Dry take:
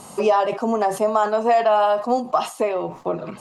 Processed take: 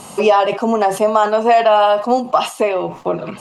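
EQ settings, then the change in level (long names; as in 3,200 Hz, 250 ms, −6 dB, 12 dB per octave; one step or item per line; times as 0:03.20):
parametric band 2,800 Hz +5.5 dB 0.67 octaves
+5.0 dB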